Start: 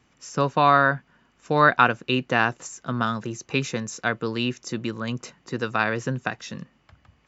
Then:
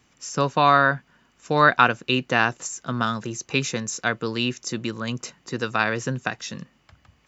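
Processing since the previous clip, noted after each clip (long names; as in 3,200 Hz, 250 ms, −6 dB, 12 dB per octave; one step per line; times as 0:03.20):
high-shelf EQ 3,900 Hz +8 dB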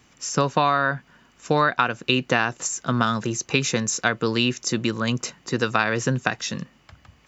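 downward compressor 12 to 1, threshold −20 dBFS, peak gain reduction 11 dB
level +5 dB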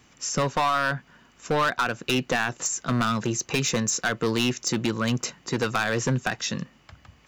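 hard clipping −18 dBFS, distortion −8 dB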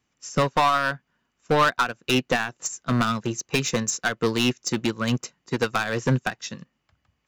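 expander for the loud parts 2.5 to 1, over −36 dBFS
level +5 dB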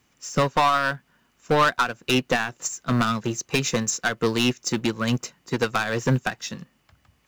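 mu-law and A-law mismatch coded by mu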